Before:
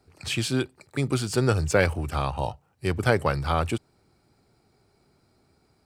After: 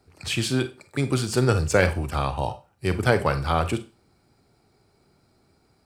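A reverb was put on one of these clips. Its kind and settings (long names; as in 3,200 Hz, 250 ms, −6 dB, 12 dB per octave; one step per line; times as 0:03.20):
four-comb reverb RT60 0.3 s, combs from 32 ms, DRR 10.5 dB
level +1.5 dB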